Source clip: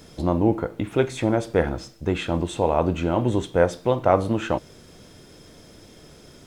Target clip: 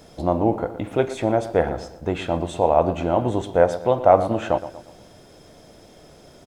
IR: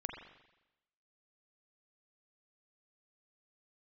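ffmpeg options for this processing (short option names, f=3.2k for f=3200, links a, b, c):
-filter_complex "[0:a]equalizer=f=690:w=1.6:g=9,asplit=2[a][b];[b]adelay=118,lowpass=f=2.7k:p=1,volume=-13dB,asplit=2[c][d];[d]adelay=118,lowpass=f=2.7k:p=1,volume=0.46,asplit=2[e][f];[f]adelay=118,lowpass=f=2.7k:p=1,volume=0.46,asplit=2[g][h];[h]adelay=118,lowpass=f=2.7k:p=1,volume=0.46,asplit=2[i][j];[j]adelay=118,lowpass=f=2.7k:p=1,volume=0.46[k];[c][e][g][i][k]amix=inputs=5:normalize=0[l];[a][l]amix=inputs=2:normalize=0,volume=-2.5dB"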